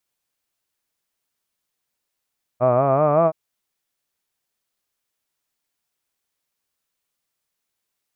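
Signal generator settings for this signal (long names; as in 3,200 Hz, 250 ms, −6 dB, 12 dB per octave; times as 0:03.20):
vowel by formant synthesis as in hud, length 0.72 s, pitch 119 Hz, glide +6 semitones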